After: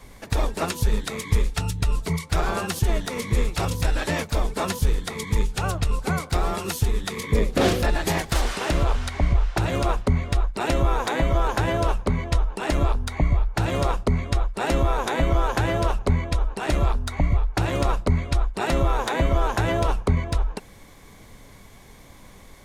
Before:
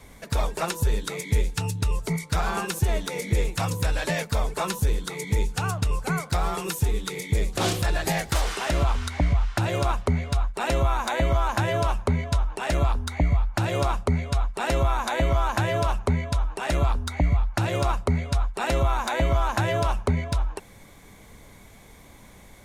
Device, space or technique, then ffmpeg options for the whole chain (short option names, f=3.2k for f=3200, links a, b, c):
octave pedal: -filter_complex "[0:a]asettb=1/sr,asplit=3[a][b][c];[a]atrim=end=7.234[d];[b]atrim=start=7.23:end=7.9,asetpts=PTS-STARTPTS,afade=t=in:d=0.004:c=qsin,afade=t=out:st=0.666:d=0.004:c=qsin,equalizer=f=500:t=o:w=1:g=10,equalizer=f=1k:t=o:w=1:g=-3,equalizer=f=2k:t=o:w=1:g=3,equalizer=f=8k:t=o:w=1:g=-4[e];[c]atrim=start=7.896[f];[d][e]acrossfade=d=0.004:c1=hsin:c2=qsin[g];[g][f]acrossfade=d=0.004:c1=qsin:c2=hsin,asplit=2[h][i];[i]asetrate=22050,aresample=44100,atempo=2,volume=-3dB[j];[h][j]amix=inputs=2:normalize=0"